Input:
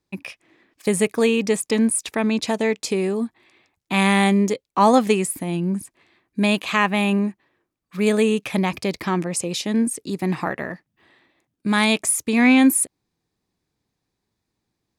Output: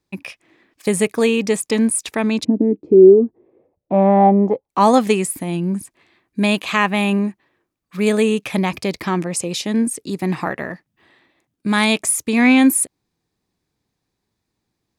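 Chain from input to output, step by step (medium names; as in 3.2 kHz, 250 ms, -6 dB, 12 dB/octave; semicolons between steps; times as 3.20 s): 2.43–4.68 s: resonant low-pass 270 Hz -> 870 Hz, resonance Q 6.4; trim +2 dB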